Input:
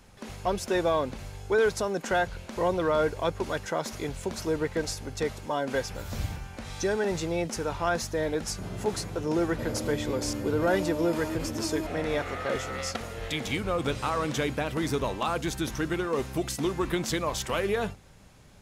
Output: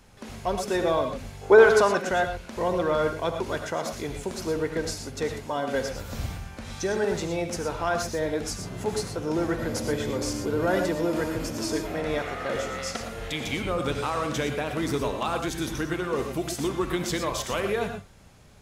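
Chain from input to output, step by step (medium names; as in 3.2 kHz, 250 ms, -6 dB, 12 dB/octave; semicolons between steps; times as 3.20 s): 1.41–2.00 s: peaking EQ 510 Hz -> 2.1 kHz +13 dB 2.7 oct; gated-style reverb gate 140 ms rising, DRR 5.5 dB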